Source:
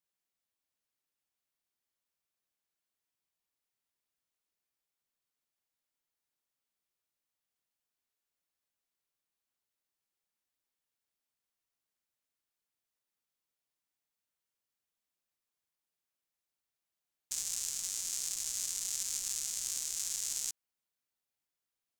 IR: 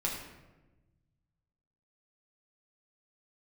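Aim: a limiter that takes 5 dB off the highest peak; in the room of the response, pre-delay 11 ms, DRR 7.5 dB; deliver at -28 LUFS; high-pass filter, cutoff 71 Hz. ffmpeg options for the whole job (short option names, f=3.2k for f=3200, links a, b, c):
-filter_complex "[0:a]highpass=71,alimiter=limit=-21.5dB:level=0:latency=1,asplit=2[a][b];[1:a]atrim=start_sample=2205,adelay=11[c];[b][c]afir=irnorm=-1:irlink=0,volume=-12.5dB[d];[a][d]amix=inputs=2:normalize=0,volume=9dB"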